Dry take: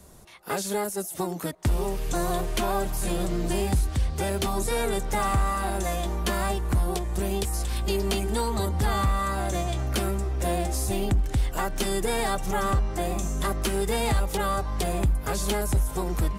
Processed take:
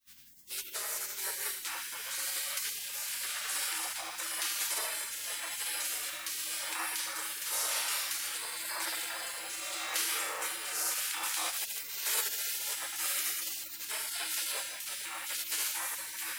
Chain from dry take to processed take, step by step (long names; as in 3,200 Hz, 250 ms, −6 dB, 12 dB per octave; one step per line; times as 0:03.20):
mains-hum notches 50/100/150/200 Hz
feedback delay network reverb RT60 1.8 s, low-frequency decay 0.7×, high-frequency decay 0.6×, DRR −8.5 dB
brickwall limiter −11.5 dBFS, peak gain reduction 6.5 dB
shaped tremolo triangle 0.92 Hz, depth 45%
frequency shifter +320 Hz
0:11.23–0:13.85: high-shelf EQ 4,000 Hz +9.5 dB
bit reduction 8 bits
gate on every frequency bin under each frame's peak −25 dB weak